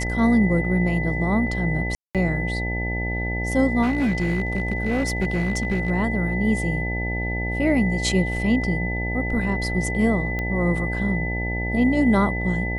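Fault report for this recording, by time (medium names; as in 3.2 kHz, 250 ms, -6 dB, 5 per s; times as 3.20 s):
buzz 60 Hz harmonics 15 -27 dBFS
whine 2 kHz -28 dBFS
1.95–2.15 s: dropout 197 ms
3.82–5.91 s: clipped -17.5 dBFS
10.39 s: pop -15 dBFS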